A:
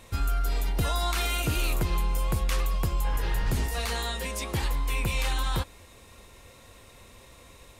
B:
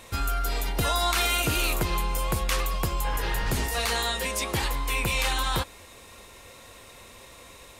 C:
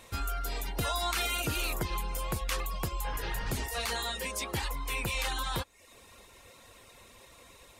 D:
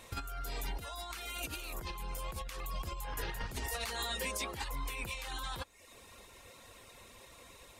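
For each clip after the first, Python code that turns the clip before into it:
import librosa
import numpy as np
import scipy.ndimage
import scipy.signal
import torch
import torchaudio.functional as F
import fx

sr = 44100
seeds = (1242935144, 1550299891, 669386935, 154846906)

y1 = fx.low_shelf(x, sr, hz=240.0, db=-8.0)
y1 = F.gain(torch.from_numpy(y1), 5.5).numpy()
y2 = fx.dereverb_blind(y1, sr, rt60_s=0.54)
y2 = F.gain(torch.from_numpy(y2), -5.5).numpy()
y3 = fx.over_compress(y2, sr, threshold_db=-35.0, ratio=-0.5)
y3 = F.gain(torch.from_numpy(y3), -3.5).numpy()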